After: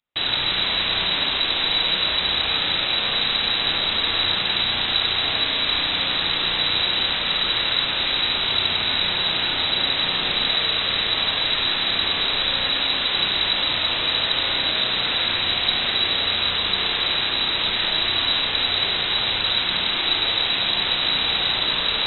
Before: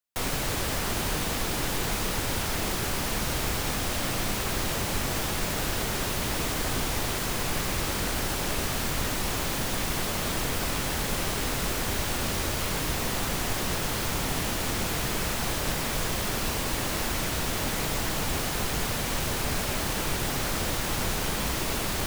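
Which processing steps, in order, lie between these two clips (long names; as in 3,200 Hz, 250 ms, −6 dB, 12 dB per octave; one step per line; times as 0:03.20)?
pitch vibrato 3.8 Hz 42 cents
voice inversion scrambler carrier 3,900 Hz
spring reverb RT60 1.5 s, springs 33/55 ms, chirp 50 ms, DRR 0 dB
level +5 dB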